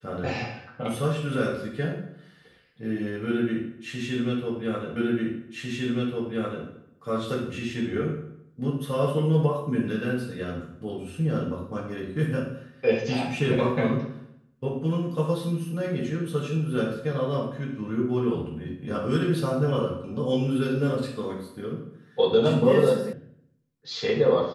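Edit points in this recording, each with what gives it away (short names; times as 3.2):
4.96 repeat of the last 1.7 s
23.13 sound cut off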